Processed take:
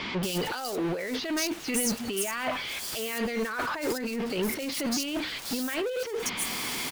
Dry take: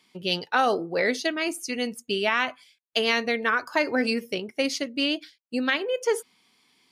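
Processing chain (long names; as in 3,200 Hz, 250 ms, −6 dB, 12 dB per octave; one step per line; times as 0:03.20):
converter with a step at zero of −27.5 dBFS
compressor whose output falls as the input rises −28 dBFS, ratio −1
multiband delay without the direct sound lows, highs 230 ms, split 4,100 Hz
level −2 dB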